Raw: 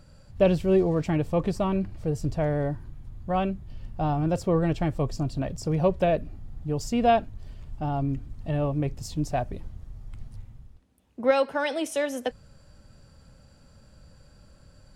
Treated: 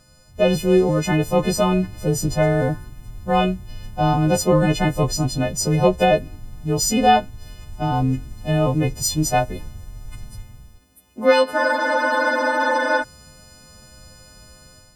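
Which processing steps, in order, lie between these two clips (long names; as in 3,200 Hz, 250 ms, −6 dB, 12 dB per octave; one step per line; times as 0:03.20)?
every partial snapped to a pitch grid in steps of 3 semitones
automatic gain control gain up to 8 dB
frozen spectrum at 0:11.60, 1.42 s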